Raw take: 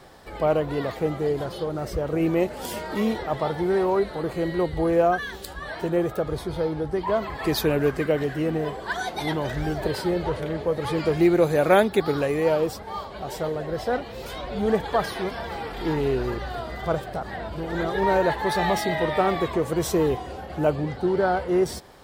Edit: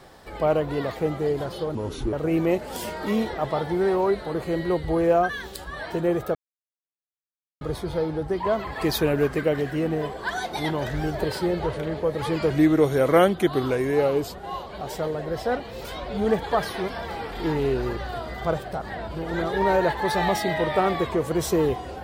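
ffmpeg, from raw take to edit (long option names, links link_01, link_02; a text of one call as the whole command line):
ffmpeg -i in.wav -filter_complex "[0:a]asplit=6[link_01][link_02][link_03][link_04][link_05][link_06];[link_01]atrim=end=1.754[link_07];[link_02]atrim=start=1.75:end=2.02,asetpts=PTS-STARTPTS,asetrate=31311,aresample=44100,atrim=end_sample=16770,asetpts=PTS-STARTPTS[link_08];[link_03]atrim=start=2.016:end=6.24,asetpts=PTS-STARTPTS,afade=type=out:start_time=4.22:duration=0.004:curve=hsin,apad=pad_dur=1.26[link_09];[link_04]atrim=start=6.24:end=11.134,asetpts=PTS-STARTPTS,afade=type=in:duration=0.004:curve=hsin[link_10];[link_05]atrim=start=11.13:end=13.08,asetpts=PTS-STARTPTS,asetrate=39690,aresample=44100[link_11];[link_06]atrim=start=13.076[link_12];[link_07][link_08]acrossfade=duration=0.004:curve1=hsin:curve2=hsin[link_13];[link_09][link_10]concat=n=2:v=0:a=1[link_14];[link_13][link_14]acrossfade=duration=0.004:curve1=hsin:curve2=hsin[link_15];[link_15][link_11]acrossfade=duration=0.004:curve1=hsin:curve2=hsin[link_16];[link_16][link_12]acrossfade=duration=0.004:curve1=hsin:curve2=hsin" out.wav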